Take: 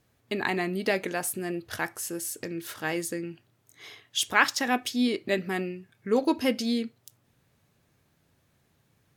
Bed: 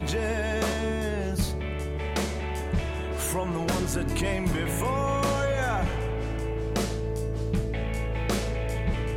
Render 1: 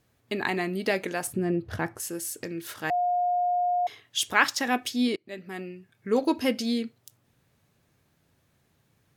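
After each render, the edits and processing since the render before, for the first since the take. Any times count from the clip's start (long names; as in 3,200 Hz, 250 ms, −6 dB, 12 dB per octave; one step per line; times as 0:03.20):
0:01.27–0:02.00: spectral tilt −3.5 dB per octave
0:02.90–0:03.87: beep over 713 Hz −22 dBFS
0:05.16–0:06.14: fade in, from −23.5 dB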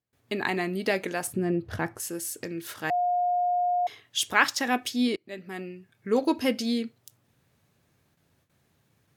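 high-pass filter 50 Hz 12 dB per octave
noise gate with hold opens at −58 dBFS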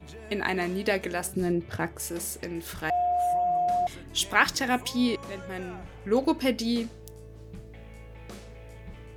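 mix in bed −16.5 dB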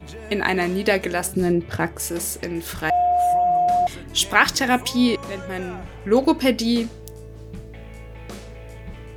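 level +7 dB
brickwall limiter −1 dBFS, peak gain reduction 2 dB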